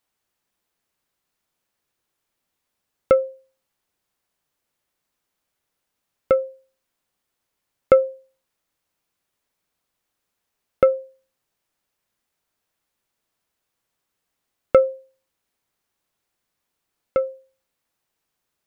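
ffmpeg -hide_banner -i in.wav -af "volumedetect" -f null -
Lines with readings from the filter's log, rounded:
mean_volume: -29.1 dB
max_volume: -1.2 dB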